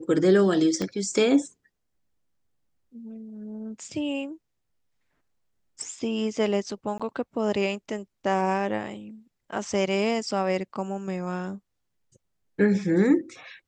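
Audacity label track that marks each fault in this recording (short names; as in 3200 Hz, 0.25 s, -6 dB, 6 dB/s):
0.820000	0.820000	pop -16 dBFS
6.980000	7.000000	gap 16 ms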